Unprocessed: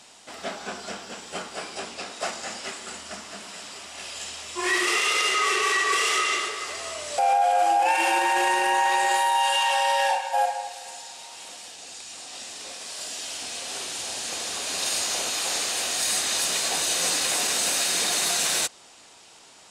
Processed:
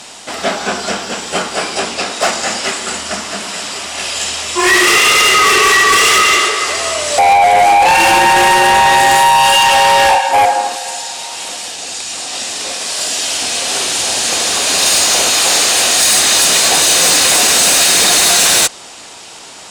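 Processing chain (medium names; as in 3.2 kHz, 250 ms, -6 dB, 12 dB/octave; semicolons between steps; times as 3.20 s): Chebyshev shaper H 5 -8 dB, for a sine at -10.5 dBFS; 10.28–10.75 s: band noise 220–1400 Hz -38 dBFS; trim +7.5 dB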